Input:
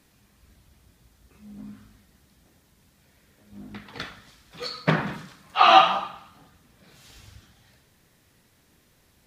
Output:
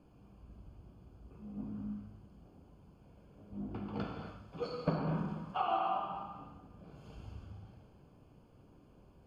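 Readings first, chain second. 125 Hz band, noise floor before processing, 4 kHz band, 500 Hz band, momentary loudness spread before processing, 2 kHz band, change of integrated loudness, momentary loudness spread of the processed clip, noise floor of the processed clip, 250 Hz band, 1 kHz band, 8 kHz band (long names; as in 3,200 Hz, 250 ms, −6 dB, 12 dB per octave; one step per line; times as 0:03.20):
−5.5 dB, −63 dBFS, −25.0 dB, −10.5 dB, 23 LU, −22.5 dB, −18.5 dB, 23 LU, −62 dBFS, −5.0 dB, −16.0 dB, can't be measured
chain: downward compressor 8 to 1, threshold −30 dBFS, peak gain reduction 20.5 dB
moving average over 23 samples
reverb whose tail is shaped and stops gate 300 ms flat, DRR 1.5 dB
level +1.5 dB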